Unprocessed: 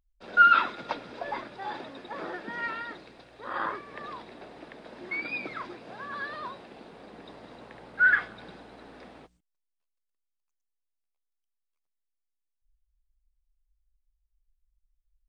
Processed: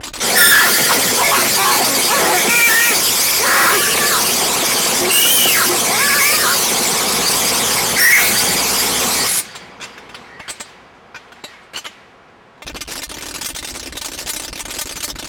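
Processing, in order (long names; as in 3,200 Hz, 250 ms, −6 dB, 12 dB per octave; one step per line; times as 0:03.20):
spike at every zero crossing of −15 dBFS
notch comb filter 300 Hz
formants moved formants +4 semitones
power curve on the samples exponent 0.35
in parallel at −7 dB: gain into a clipping stage and back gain 16 dB
on the sum: high-pass filter 45 Hz
low-shelf EQ 190 Hz −4.5 dB
on a send: repeating echo 1,138 ms, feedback 40%, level −19 dB
on the sum: low-pass that shuts in the quiet parts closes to 1,100 Hz, open at −8.5 dBFS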